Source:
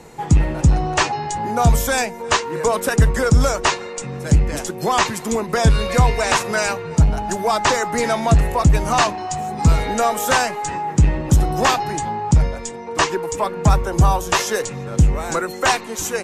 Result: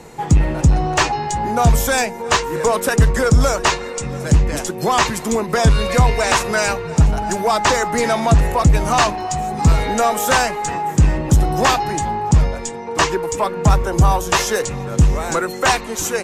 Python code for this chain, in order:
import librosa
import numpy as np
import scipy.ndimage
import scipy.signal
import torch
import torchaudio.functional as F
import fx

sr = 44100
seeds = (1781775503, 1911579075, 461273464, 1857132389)

p1 = np.clip(10.0 ** (18.5 / 20.0) * x, -1.0, 1.0) / 10.0 ** (18.5 / 20.0)
p2 = x + (p1 * librosa.db_to_amplitude(-9.0))
y = p2 + 10.0 ** (-20.0 / 20.0) * np.pad(p2, (int(689 * sr / 1000.0), 0))[:len(p2)]